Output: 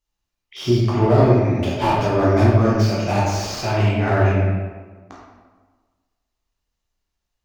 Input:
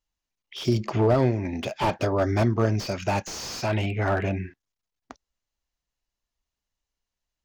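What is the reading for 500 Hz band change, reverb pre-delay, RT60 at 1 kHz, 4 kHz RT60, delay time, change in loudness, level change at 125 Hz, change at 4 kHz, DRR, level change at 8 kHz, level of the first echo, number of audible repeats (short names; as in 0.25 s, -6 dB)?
+6.5 dB, 10 ms, 1.4 s, 0.85 s, none, +7.5 dB, +9.0 dB, +4.5 dB, -6.0 dB, +3.5 dB, none, none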